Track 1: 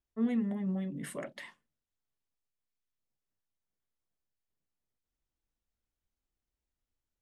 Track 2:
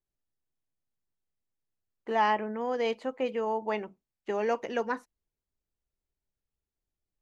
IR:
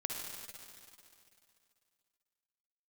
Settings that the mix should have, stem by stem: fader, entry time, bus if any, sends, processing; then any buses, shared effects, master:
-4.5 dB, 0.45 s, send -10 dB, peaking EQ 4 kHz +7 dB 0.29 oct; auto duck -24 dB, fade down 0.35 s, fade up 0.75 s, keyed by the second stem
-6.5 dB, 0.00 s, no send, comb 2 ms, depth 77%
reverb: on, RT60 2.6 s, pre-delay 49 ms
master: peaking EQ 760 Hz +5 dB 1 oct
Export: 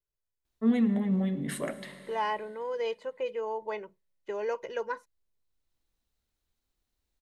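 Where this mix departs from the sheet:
stem 1 -4.5 dB -> +4.0 dB; master: missing peaking EQ 760 Hz +5 dB 1 oct

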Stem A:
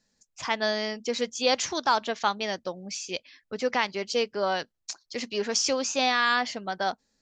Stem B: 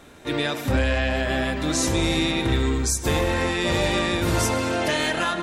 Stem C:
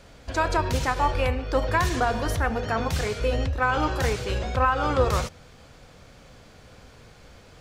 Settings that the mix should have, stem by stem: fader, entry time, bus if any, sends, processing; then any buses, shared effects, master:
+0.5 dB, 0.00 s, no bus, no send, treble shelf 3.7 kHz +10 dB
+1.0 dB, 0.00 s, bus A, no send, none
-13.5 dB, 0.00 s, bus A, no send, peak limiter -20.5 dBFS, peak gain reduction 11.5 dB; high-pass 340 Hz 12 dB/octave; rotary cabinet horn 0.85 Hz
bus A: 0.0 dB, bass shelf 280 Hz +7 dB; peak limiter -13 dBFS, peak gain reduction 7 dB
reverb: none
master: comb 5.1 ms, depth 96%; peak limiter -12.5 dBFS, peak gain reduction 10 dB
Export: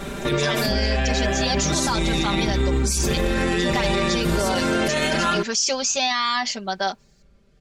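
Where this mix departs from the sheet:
stem B +1.0 dB -> +11.5 dB; stem C: missing high-pass 340 Hz 12 dB/octave

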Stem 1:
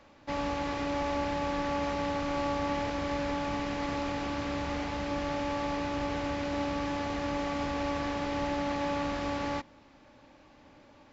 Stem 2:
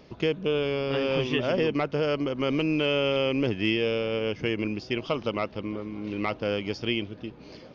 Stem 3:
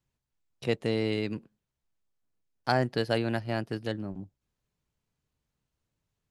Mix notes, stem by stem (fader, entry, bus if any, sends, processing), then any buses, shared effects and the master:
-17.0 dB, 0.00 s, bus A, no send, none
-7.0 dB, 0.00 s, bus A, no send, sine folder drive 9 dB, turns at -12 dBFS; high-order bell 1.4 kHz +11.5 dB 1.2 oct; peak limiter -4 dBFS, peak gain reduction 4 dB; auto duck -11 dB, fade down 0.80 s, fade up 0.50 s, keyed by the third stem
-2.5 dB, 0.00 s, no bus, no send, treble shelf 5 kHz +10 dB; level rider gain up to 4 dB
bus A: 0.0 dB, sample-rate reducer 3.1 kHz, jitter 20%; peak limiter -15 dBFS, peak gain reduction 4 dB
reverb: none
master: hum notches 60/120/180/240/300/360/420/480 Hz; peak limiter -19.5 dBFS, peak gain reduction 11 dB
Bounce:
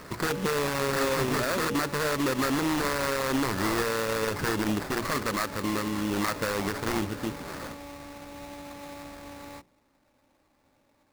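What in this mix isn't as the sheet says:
stem 1 -17.0 dB -> -10.5 dB; stem 3: muted

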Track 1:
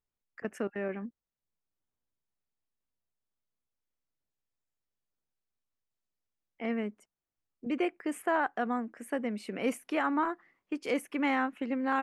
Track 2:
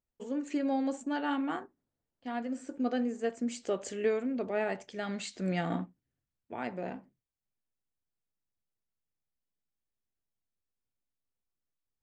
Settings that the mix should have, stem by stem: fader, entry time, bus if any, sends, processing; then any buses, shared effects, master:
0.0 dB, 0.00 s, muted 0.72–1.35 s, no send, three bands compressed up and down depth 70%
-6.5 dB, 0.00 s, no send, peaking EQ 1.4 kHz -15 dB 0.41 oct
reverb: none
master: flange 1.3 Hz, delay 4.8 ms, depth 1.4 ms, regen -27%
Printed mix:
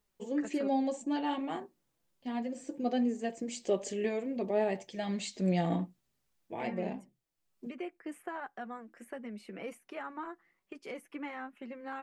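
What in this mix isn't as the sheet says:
stem 1 0.0 dB -> -7.0 dB; stem 2 -6.5 dB -> +5.0 dB

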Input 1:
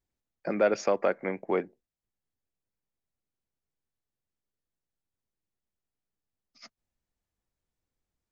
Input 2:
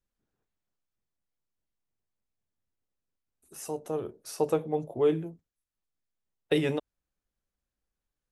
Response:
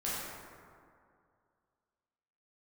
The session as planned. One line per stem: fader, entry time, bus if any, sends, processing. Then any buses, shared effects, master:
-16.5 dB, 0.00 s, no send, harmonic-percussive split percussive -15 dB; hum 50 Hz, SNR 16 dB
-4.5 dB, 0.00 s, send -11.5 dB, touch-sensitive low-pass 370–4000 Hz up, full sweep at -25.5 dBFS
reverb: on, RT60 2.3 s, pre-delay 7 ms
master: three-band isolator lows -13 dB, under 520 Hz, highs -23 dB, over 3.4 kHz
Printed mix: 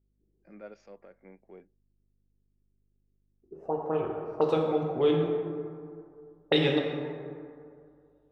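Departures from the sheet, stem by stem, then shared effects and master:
stem 2: send -11.5 dB -> -1.5 dB; master: missing three-band isolator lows -13 dB, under 520 Hz, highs -23 dB, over 3.4 kHz

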